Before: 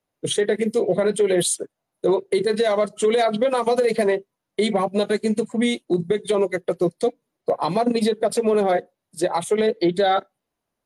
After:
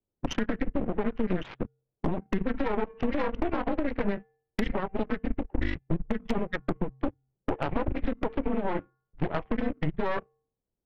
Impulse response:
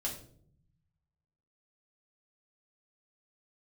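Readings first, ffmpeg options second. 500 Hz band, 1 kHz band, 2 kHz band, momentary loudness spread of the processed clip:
-14.0 dB, -10.0 dB, -7.0 dB, 6 LU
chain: -filter_complex "[0:a]bandreject=f=322.1:t=h:w=4,bandreject=f=644.2:t=h:w=4,bandreject=f=966.3:t=h:w=4,bandreject=f=1.2884k:t=h:w=4,bandreject=f=1.6105k:t=h:w=4,bandreject=f=1.9326k:t=h:w=4,bandreject=f=2.2547k:t=h:w=4,bandreject=f=2.5768k:t=h:w=4,bandreject=f=2.8989k:t=h:w=4,bandreject=f=3.221k:t=h:w=4,bandreject=f=3.5431k:t=h:w=4,bandreject=f=3.8652k:t=h:w=4,bandreject=f=4.1873k:t=h:w=4,bandreject=f=4.5094k:t=h:w=4,bandreject=f=4.8315k:t=h:w=4,bandreject=f=5.1536k:t=h:w=4,bandreject=f=5.4757k:t=h:w=4,bandreject=f=5.7978k:t=h:w=4,bandreject=f=6.1199k:t=h:w=4,bandreject=f=6.442k:t=h:w=4,bandreject=f=6.7641k:t=h:w=4,bandreject=f=7.0862k:t=h:w=4,bandreject=f=7.4083k:t=h:w=4,bandreject=f=7.7304k:t=h:w=4,bandreject=f=8.0525k:t=h:w=4,bandreject=f=8.3746k:t=h:w=4,bandreject=f=8.6967k:t=h:w=4,bandreject=f=9.0188k:t=h:w=4,bandreject=f=9.3409k:t=h:w=4,bandreject=f=9.663k:t=h:w=4,bandreject=f=9.9851k:t=h:w=4,bandreject=f=10.3072k:t=h:w=4,bandreject=f=10.6293k:t=h:w=4,acrossover=split=160[a][b];[b]adynamicsmooth=sensitivity=4.5:basefreq=540[c];[a][c]amix=inputs=2:normalize=0,highpass=f=150:t=q:w=0.5412,highpass=f=150:t=q:w=1.307,lowpass=f=2.9k:t=q:w=0.5176,lowpass=f=2.9k:t=q:w=0.7071,lowpass=f=2.9k:t=q:w=1.932,afreqshift=-190,acompressor=threshold=-28dB:ratio=10,aeval=exprs='0.1*(cos(1*acos(clip(val(0)/0.1,-1,1)))-cos(1*PI/2))+0.0447*(cos(4*acos(clip(val(0)/0.1,-1,1)))-cos(4*PI/2))':c=same"

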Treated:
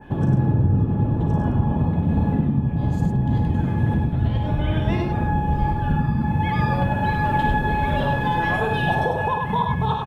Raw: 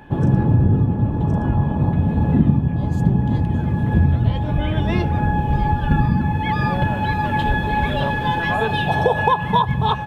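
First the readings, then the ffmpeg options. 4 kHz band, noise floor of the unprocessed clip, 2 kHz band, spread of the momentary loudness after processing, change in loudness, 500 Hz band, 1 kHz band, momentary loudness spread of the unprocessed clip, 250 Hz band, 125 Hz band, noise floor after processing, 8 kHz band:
-5.5 dB, -24 dBFS, -2.5 dB, 3 LU, -2.5 dB, -2.5 dB, -2.5 dB, 4 LU, -2.5 dB, -2.5 dB, -25 dBFS, n/a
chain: -af "adynamicequalizer=threshold=0.0126:dfrequency=3500:dqfactor=0.8:tfrequency=3500:tqfactor=0.8:attack=5:release=100:ratio=0.375:range=2.5:mode=cutabove:tftype=bell,alimiter=limit=-12.5dB:level=0:latency=1:release=374,aecho=1:1:54|99:0.398|0.596"

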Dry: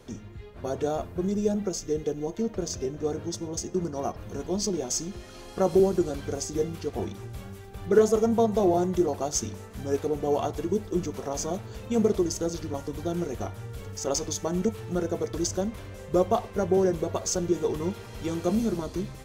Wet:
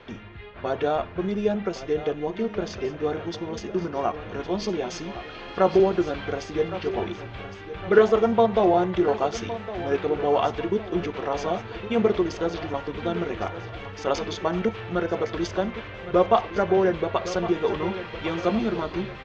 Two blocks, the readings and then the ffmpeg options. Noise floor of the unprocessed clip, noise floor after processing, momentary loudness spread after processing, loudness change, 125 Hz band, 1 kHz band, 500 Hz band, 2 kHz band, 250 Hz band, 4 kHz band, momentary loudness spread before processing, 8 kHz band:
-44 dBFS, -40 dBFS, 12 LU, +2.5 dB, -0.5 dB, +7.0 dB, +3.5 dB, +11.0 dB, +1.0 dB, +2.5 dB, 13 LU, under -10 dB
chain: -af "lowpass=f=3.1k:w=0.5412,lowpass=f=3.1k:w=1.3066,tiltshelf=f=720:g=-7.5,aecho=1:1:1112|2224|3336|4448|5560:0.211|0.101|0.0487|0.0234|0.0112,volume=6dB"

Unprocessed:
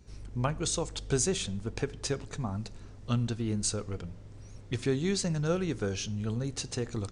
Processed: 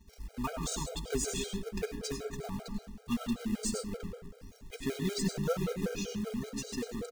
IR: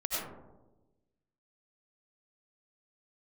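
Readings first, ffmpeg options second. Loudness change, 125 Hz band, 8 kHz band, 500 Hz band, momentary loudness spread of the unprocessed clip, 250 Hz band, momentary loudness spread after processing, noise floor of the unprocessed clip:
-4.0 dB, -8.5 dB, -4.5 dB, -3.5 dB, 12 LU, -1.5 dB, 11 LU, -48 dBFS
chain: -filter_complex "[0:a]aecho=1:1:4.4:0.84,acrusher=bits=3:mode=log:mix=0:aa=0.000001,asplit=2[a][b];[1:a]atrim=start_sample=2205[c];[b][c]afir=irnorm=-1:irlink=0,volume=-6dB[d];[a][d]amix=inputs=2:normalize=0,afftfilt=real='re*gt(sin(2*PI*5.2*pts/sr)*(1-2*mod(floor(b*sr/1024/410),2)),0)':imag='im*gt(sin(2*PI*5.2*pts/sr)*(1-2*mod(floor(b*sr/1024/410),2)),0)':win_size=1024:overlap=0.75,volume=-7dB"

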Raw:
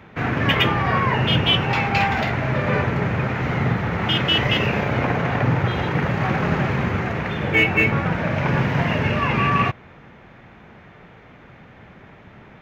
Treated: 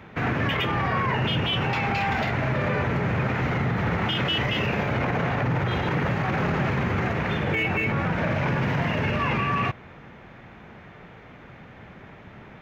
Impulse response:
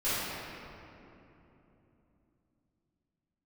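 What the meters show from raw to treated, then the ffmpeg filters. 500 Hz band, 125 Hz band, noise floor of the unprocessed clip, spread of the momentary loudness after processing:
-3.5 dB, -4.0 dB, -46 dBFS, 2 LU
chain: -af "alimiter=limit=-16.5dB:level=0:latency=1:release=32"

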